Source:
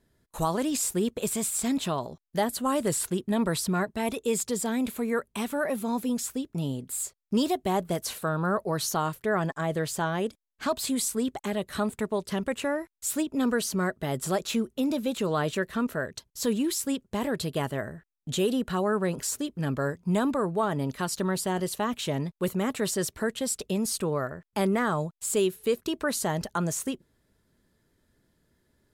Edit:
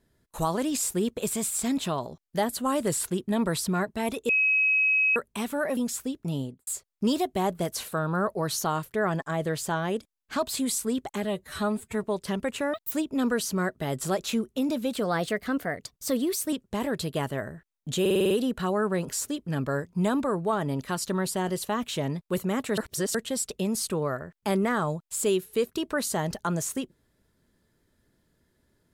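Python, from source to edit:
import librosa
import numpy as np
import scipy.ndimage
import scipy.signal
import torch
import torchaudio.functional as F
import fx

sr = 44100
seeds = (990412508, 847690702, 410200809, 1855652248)

y = fx.studio_fade_out(x, sr, start_s=6.7, length_s=0.27)
y = fx.edit(y, sr, fx.bleep(start_s=4.29, length_s=0.87, hz=2550.0, db=-19.5),
    fx.cut(start_s=5.77, length_s=0.3),
    fx.stretch_span(start_s=11.54, length_s=0.53, factor=1.5),
    fx.speed_span(start_s=12.77, length_s=0.36, speed=1.97),
    fx.speed_span(start_s=15.14, length_s=1.79, speed=1.12),
    fx.stutter(start_s=18.41, slice_s=0.05, count=7),
    fx.reverse_span(start_s=22.88, length_s=0.37), tone=tone)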